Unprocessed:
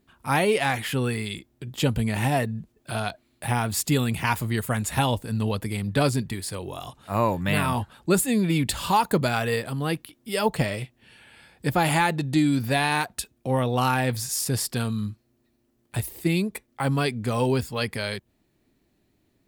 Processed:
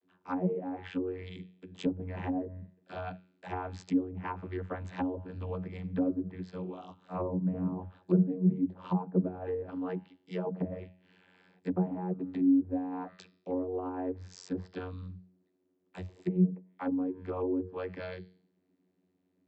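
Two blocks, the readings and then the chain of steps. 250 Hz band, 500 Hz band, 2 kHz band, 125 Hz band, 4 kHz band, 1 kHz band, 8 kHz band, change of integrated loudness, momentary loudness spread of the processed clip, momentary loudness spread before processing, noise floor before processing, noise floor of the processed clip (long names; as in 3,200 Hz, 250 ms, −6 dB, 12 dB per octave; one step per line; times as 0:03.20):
−4.5 dB, −9.0 dB, −21.0 dB, −10.5 dB, below −20 dB, −15.5 dB, below −30 dB, −8.5 dB, 16 LU, 10 LU, −69 dBFS, −75 dBFS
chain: hum removal 200.1 Hz, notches 25
channel vocoder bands 32, saw 91.6 Hz
treble cut that deepens with the level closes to 460 Hz, closed at −22 dBFS
level −6 dB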